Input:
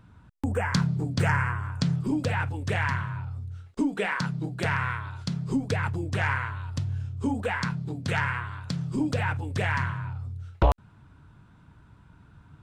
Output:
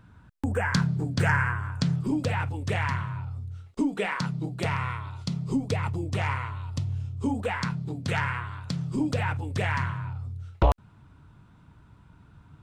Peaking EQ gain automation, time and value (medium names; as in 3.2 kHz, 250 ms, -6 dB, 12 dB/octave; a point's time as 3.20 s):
peaking EQ 1.6 kHz 0.23 oct
1.54 s +4.5 dB
2.46 s -6.5 dB
4.25 s -6.5 dB
4.70 s -14.5 dB
7.09 s -14.5 dB
7.64 s -4 dB